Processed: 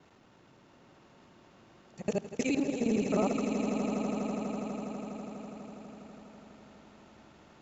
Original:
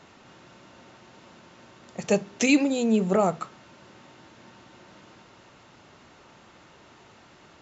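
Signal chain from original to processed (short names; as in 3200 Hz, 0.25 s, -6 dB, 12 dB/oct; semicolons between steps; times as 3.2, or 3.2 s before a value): local time reversal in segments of 52 ms; tilt shelf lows +3 dB, about 740 Hz; level quantiser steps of 11 dB; on a send: swelling echo 82 ms, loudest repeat 8, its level -11 dB; on the sum: gain -6 dB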